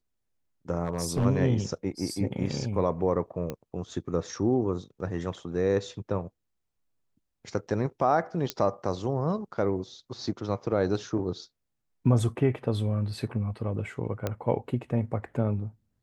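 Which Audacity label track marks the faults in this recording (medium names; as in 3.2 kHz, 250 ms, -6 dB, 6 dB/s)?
0.840000	1.260000	clipped -21 dBFS
3.500000	3.500000	pop -19 dBFS
8.500000	8.500000	pop -12 dBFS
14.270000	14.270000	pop -15 dBFS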